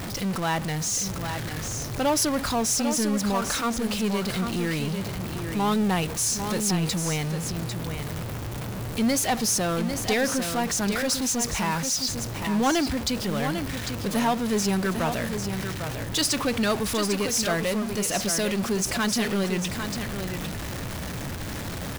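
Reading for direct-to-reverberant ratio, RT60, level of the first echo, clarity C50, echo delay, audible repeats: no reverb, no reverb, -7.5 dB, no reverb, 799 ms, 1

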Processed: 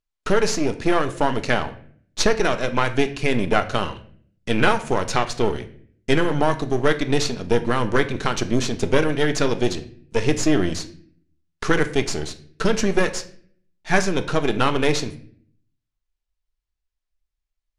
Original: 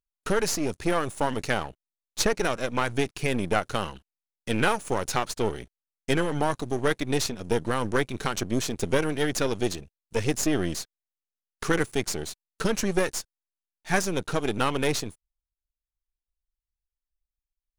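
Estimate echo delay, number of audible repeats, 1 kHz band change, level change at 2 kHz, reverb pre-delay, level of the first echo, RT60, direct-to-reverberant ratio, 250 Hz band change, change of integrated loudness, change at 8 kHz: no echo, no echo, +5.5 dB, +5.5 dB, 3 ms, no echo, 0.55 s, 8.0 dB, +6.0 dB, +5.5 dB, +1.5 dB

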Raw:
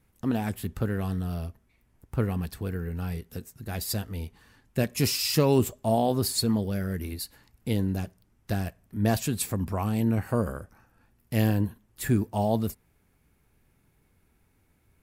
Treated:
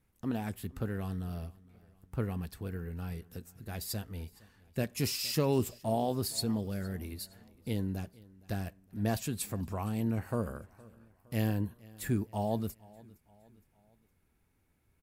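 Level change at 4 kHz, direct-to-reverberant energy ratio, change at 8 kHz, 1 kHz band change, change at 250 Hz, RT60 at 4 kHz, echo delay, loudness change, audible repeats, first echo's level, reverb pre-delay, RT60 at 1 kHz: -7.0 dB, no reverb, -7.0 dB, -7.0 dB, -7.0 dB, no reverb, 464 ms, -7.0 dB, 2, -23.0 dB, no reverb, no reverb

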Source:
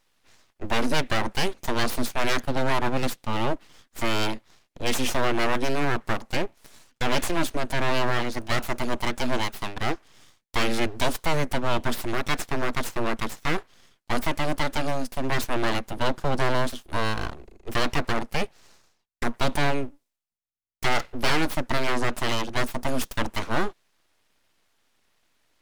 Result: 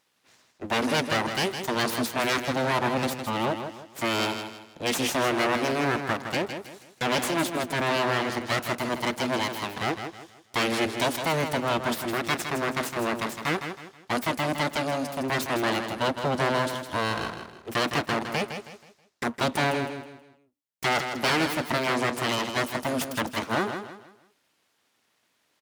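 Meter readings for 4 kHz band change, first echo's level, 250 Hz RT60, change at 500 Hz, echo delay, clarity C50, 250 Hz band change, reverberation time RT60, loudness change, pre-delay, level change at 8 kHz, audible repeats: +0.5 dB, -8.0 dB, no reverb, +0.5 dB, 160 ms, no reverb, +0.5 dB, no reverb, +0.5 dB, no reverb, +0.5 dB, 3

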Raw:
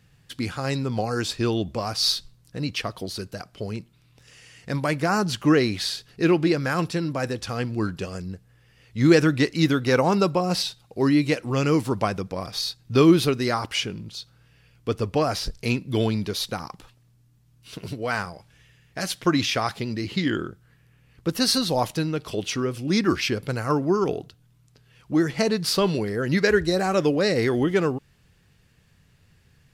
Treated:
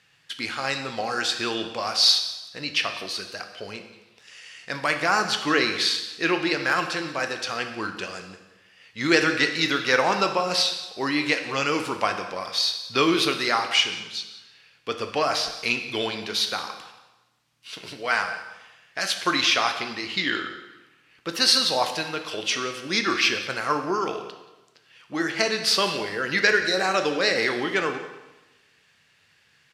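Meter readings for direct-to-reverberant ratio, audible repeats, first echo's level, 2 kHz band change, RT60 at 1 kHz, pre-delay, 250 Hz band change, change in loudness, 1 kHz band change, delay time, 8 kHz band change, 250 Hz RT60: 5.5 dB, 1, -19.0 dB, +6.0 dB, 1.0 s, 6 ms, -7.5 dB, +0.5 dB, +2.5 dB, 179 ms, +2.5 dB, 1.1 s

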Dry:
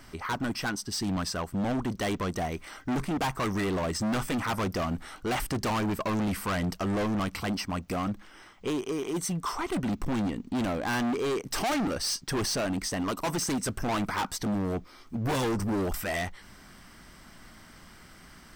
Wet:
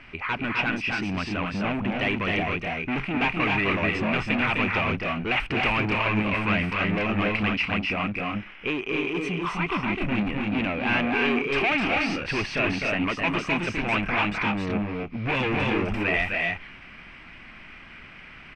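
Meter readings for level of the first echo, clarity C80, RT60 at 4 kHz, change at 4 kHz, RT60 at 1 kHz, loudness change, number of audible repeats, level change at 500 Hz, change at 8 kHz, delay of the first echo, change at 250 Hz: -4.0 dB, no reverb, no reverb, +4.0 dB, no reverb, +5.5 dB, 1, +3.0 dB, under -10 dB, 256 ms, +3.0 dB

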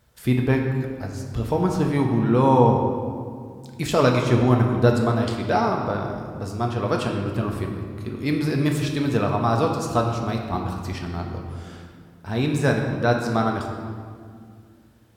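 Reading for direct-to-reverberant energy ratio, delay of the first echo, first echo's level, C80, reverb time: 1.0 dB, no echo, no echo, 5.0 dB, 2.1 s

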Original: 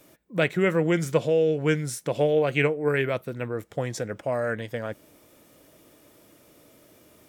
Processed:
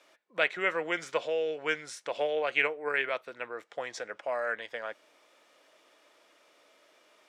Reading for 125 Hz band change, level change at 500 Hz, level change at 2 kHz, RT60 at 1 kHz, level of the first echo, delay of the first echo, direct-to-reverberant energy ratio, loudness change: -28.0 dB, -8.5 dB, -0.5 dB, no reverb, no echo, no echo, no reverb, -6.5 dB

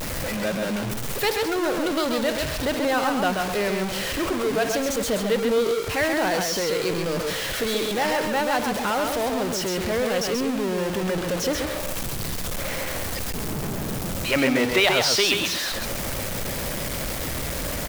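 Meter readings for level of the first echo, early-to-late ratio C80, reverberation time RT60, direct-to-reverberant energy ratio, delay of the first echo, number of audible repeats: -4.5 dB, no reverb, no reverb, no reverb, 133 ms, 1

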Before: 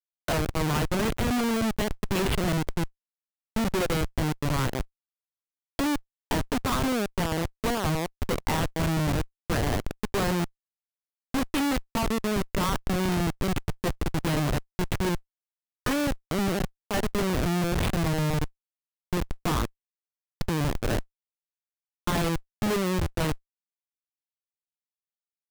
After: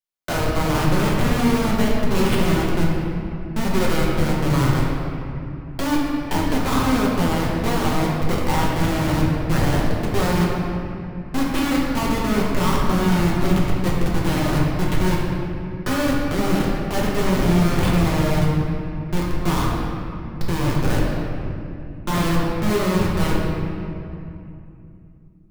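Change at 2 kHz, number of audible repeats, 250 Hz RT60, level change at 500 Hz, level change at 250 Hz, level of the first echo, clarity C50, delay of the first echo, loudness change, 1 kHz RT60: +6.0 dB, no echo, 3.9 s, +6.5 dB, +8.0 dB, no echo, -0.5 dB, no echo, +6.5 dB, 2.6 s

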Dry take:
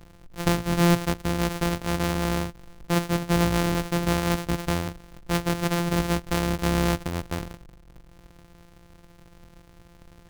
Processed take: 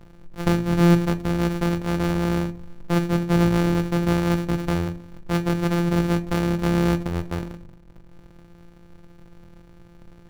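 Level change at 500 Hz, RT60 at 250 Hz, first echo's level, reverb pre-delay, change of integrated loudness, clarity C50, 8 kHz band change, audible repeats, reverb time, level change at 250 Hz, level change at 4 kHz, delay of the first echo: +2.5 dB, 0.70 s, no echo, 5 ms, +3.0 dB, 19.0 dB, -5.5 dB, no echo, 0.40 s, +4.5 dB, -3.0 dB, no echo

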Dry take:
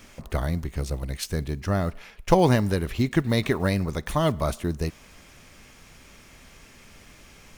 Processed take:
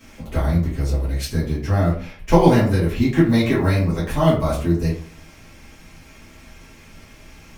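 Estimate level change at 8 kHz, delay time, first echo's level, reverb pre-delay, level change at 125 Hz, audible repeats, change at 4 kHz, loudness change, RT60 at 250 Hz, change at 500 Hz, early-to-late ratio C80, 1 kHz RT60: +1.0 dB, no echo, no echo, 4 ms, +7.0 dB, no echo, +2.5 dB, +6.0 dB, 0.55 s, +5.0 dB, 10.0 dB, 0.45 s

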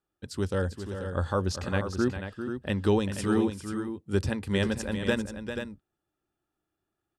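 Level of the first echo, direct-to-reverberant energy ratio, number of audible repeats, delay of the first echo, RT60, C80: -9.5 dB, no reverb, 2, 397 ms, no reverb, no reverb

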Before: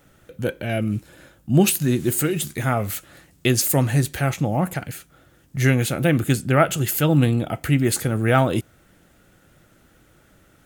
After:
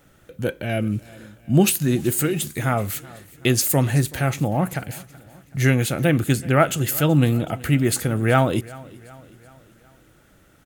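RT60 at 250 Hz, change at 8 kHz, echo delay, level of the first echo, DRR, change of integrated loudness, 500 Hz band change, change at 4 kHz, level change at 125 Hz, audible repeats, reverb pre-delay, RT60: no reverb, 0.0 dB, 378 ms, -21.5 dB, no reverb, 0.0 dB, 0.0 dB, 0.0 dB, 0.0 dB, 3, no reverb, no reverb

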